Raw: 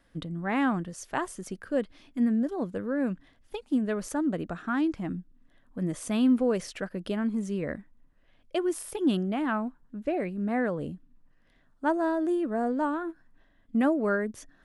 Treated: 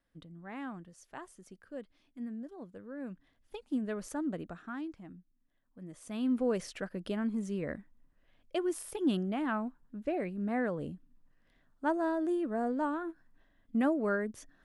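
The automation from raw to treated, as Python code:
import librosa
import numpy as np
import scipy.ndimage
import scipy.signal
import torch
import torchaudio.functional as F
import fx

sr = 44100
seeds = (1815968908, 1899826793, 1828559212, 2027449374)

y = fx.gain(x, sr, db=fx.line((2.83, -15.5), (3.61, -7.0), (4.34, -7.0), (5.12, -17.0), (5.86, -17.0), (6.47, -4.5)))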